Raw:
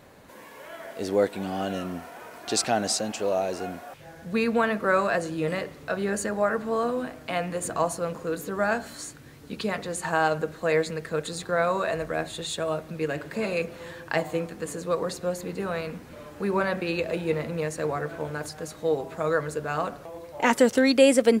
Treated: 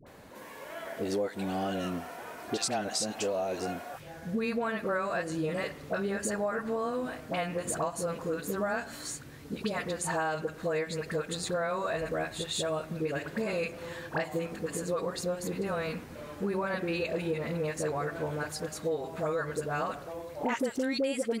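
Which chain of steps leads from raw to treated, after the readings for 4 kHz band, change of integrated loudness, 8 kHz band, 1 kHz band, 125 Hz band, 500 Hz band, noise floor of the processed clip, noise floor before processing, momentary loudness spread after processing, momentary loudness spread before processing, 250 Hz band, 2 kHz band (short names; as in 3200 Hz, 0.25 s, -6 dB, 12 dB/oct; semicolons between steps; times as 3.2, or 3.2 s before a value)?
-4.5 dB, -6.0 dB, -4.0 dB, -6.0 dB, -3.0 dB, -6.5 dB, -47 dBFS, -47 dBFS, 8 LU, 13 LU, -6.0 dB, -6.0 dB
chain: dispersion highs, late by 66 ms, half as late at 810 Hz; compressor 6:1, threshold -28 dBFS, peak gain reduction 14.5 dB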